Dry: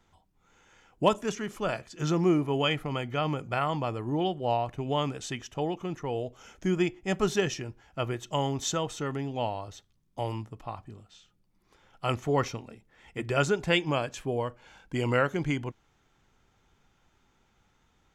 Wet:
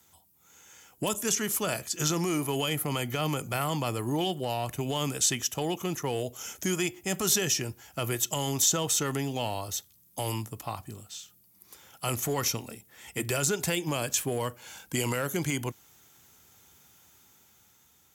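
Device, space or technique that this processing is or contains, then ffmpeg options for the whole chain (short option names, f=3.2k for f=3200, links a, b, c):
FM broadcast chain: -filter_complex "[0:a]highpass=f=66:w=0.5412,highpass=f=66:w=1.3066,dynaudnorm=f=320:g=7:m=4dB,acrossover=split=490|1000|7800[a][b][c][d];[a]acompressor=threshold=-27dB:ratio=4[e];[b]acompressor=threshold=-35dB:ratio=4[f];[c]acompressor=threshold=-32dB:ratio=4[g];[d]acompressor=threshold=-51dB:ratio=4[h];[e][f][g][h]amix=inputs=4:normalize=0,aemphasis=mode=production:type=50fm,alimiter=limit=-20dB:level=0:latency=1:release=17,asoftclip=type=hard:threshold=-21.5dB,lowpass=f=15k:w=0.5412,lowpass=f=15k:w=1.3066,aemphasis=mode=production:type=50fm"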